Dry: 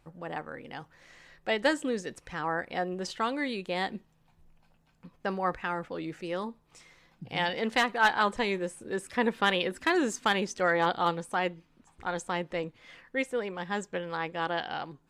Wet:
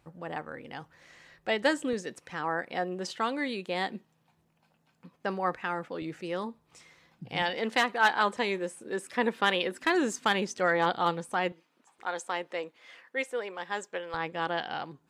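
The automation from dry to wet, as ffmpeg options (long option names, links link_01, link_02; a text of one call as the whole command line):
ffmpeg -i in.wav -af "asetnsamples=nb_out_samples=441:pad=0,asendcmd='1.93 highpass f 150;6.02 highpass f 69;7.42 highpass f 200;9.84 highpass f 96;11.52 highpass f 410;14.14 highpass f 100',highpass=55" out.wav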